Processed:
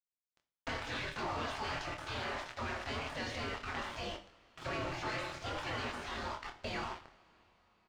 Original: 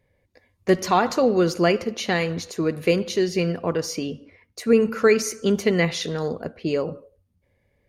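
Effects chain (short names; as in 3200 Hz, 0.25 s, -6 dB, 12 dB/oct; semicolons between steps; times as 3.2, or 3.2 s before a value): spectral gate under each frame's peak -25 dB weak; high shelf 2200 Hz -11 dB; sample leveller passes 5; transient shaper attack -2 dB, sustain +10 dB; compressor 8:1, threshold -44 dBFS, peak gain reduction 18 dB; requantised 8-bit, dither none; air absorption 140 m; doubler 25 ms -6 dB; reverb, pre-delay 3 ms, DRR 7.5 dB; gain +5.5 dB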